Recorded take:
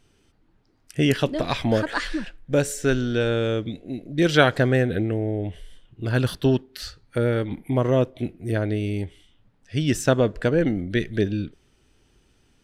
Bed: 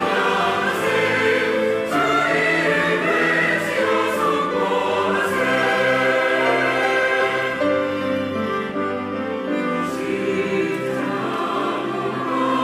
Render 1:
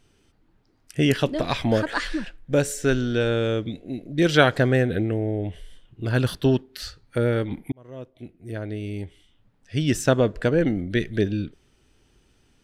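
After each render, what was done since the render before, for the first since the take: 7.72–9.81 s: fade in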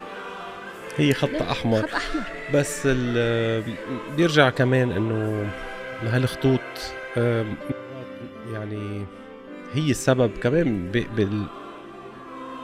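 add bed -16.5 dB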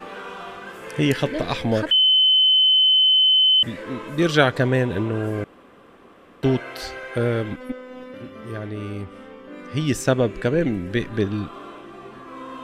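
1.91–3.63 s: bleep 3.05 kHz -12.5 dBFS; 5.44–6.43 s: room tone; 7.56–8.14 s: robot voice 254 Hz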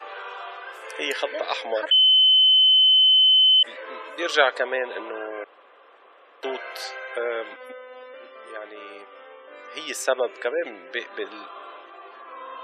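high-pass 500 Hz 24 dB/octave; spectral gate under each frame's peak -30 dB strong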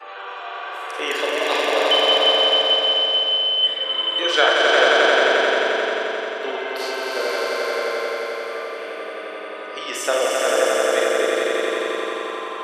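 echo with a slow build-up 88 ms, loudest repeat 5, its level -3.5 dB; Schroeder reverb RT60 0.45 s, combs from 33 ms, DRR 1.5 dB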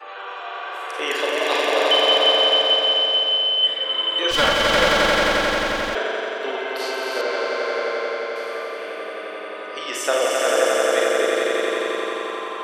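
4.31–5.95 s: comb filter that takes the minimum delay 3.6 ms; 7.21–8.36 s: distance through air 92 m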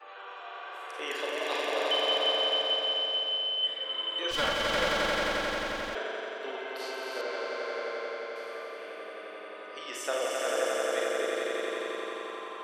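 trim -11 dB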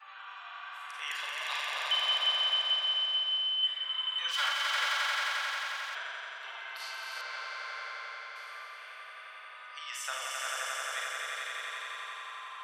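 high-pass 1 kHz 24 dB/octave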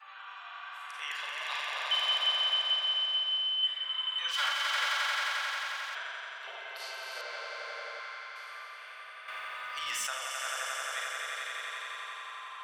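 1.06–1.92 s: treble shelf 6.7 kHz -7 dB; 6.47–8.00 s: resonant low shelf 740 Hz +8 dB, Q 1.5; 9.28–10.07 s: waveshaping leveller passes 2

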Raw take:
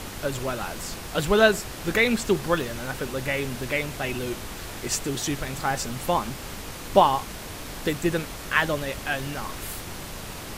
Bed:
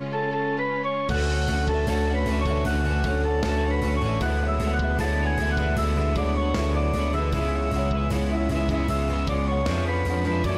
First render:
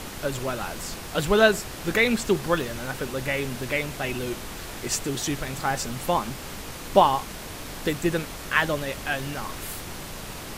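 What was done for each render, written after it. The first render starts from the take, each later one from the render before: de-hum 50 Hz, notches 2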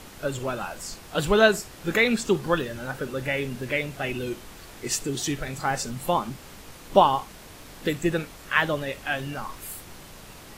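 noise print and reduce 8 dB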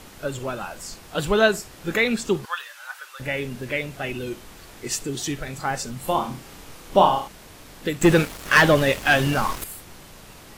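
2.45–3.20 s: high-pass 1 kHz 24 dB/octave; 6.00–7.28 s: flutter echo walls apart 5.4 m, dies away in 0.36 s; 8.01–9.64 s: waveshaping leveller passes 3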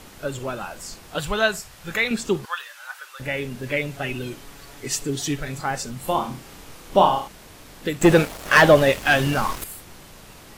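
1.18–2.11 s: peaking EQ 320 Hz -11.5 dB 1.3 oct; 3.63–5.61 s: comb 7.1 ms, depth 54%; 8.00–8.91 s: peaking EQ 660 Hz +6 dB 0.98 oct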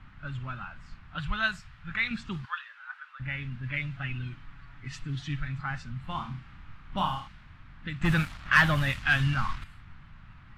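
level-controlled noise filter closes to 1.9 kHz, open at -12 dBFS; FFT filter 130 Hz 0 dB, 270 Hz -13 dB, 440 Hz -30 dB, 1.3 kHz -4 dB, 4 kHz -8 dB, 6.1 kHz -13 dB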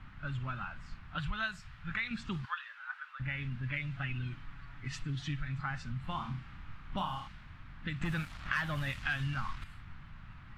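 compression 4:1, threshold -33 dBFS, peak gain reduction 14.5 dB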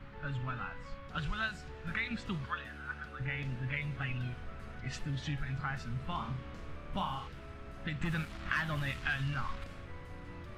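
add bed -26 dB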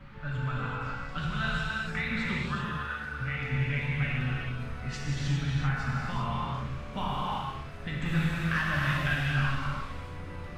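gated-style reverb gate 430 ms flat, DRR -5.5 dB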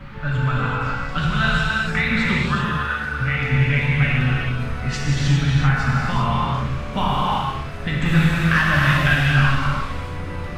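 trim +11.5 dB

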